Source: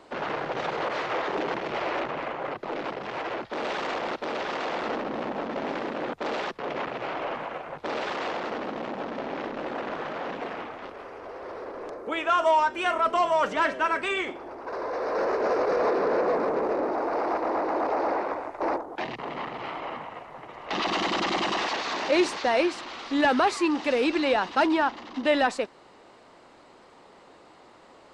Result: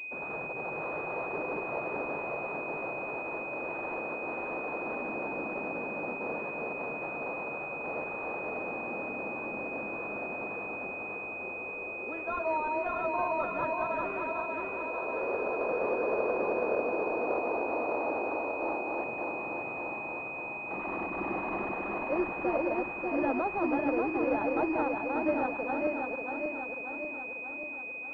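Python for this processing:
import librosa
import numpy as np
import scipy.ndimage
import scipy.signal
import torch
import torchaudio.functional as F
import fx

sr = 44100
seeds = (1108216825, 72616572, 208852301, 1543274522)

y = fx.reverse_delay_fb(x, sr, ms=294, feedback_pct=77, wet_db=-2)
y = fx.pwm(y, sr, carrier_hz=2500.0)
y = y * 10.0 ** (-8.5 / 20.0)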